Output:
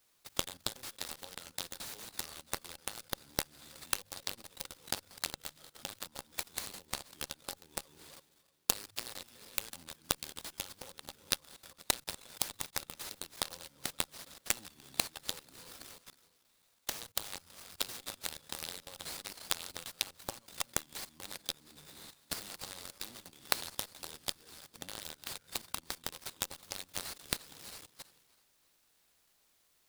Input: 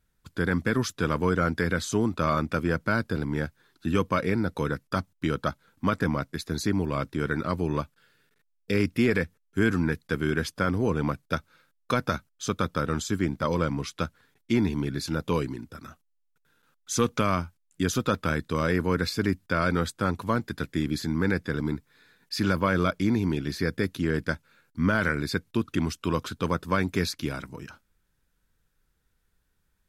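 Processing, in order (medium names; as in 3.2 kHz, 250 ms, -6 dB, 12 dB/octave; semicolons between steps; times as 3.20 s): backward echo that repeats 163 ms, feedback 51%, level -12 dB; pre-emphasis filter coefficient 0.9; de-hum 50.83 Hz, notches 3; level held to a coarse grid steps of 22 dB; transient shaper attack +2 dB, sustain +6 dB; compression 16:1, threshold -56 dBFS, peak gain reduction 18 dB; Chebyshev shaper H 2 -9 dB, 7 -15 dB, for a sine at -35.5 dBFS; resonant high shelf 2.9 kHz +11.5 dB, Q 3; small resonant body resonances 550/810/2700 Hz, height 9 dB; delay time shaken by noise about 4.5 kHz, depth 0.042 ms; trim +18 dB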